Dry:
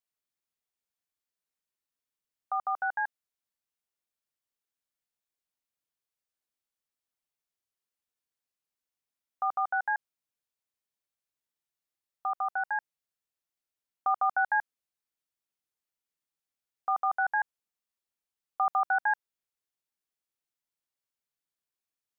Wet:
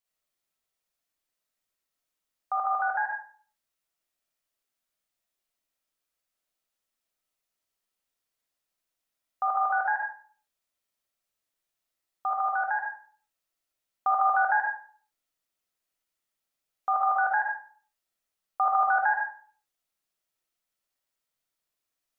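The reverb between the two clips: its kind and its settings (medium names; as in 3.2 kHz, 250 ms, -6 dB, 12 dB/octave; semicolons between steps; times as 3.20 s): algorithmic reverb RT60 0.45 s, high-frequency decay 0.7×, pre-delay 15 ms, DRR -2.5 dB; trim +2 dB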